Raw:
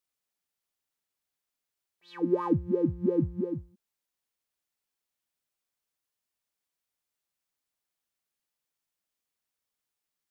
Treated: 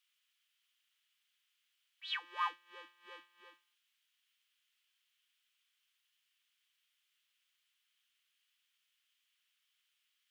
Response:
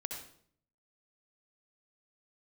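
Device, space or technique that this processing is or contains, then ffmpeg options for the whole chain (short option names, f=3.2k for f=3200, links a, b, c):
headphones lying on a table: -af "highpass=f=1.2k:w=0.5412,highpass=f=1.2k:w=1.3066,equalizer=f=2.3k:t=o:w=2.2:g=9,equalizer=f=3.1k:t=o:w=0.48:g=10"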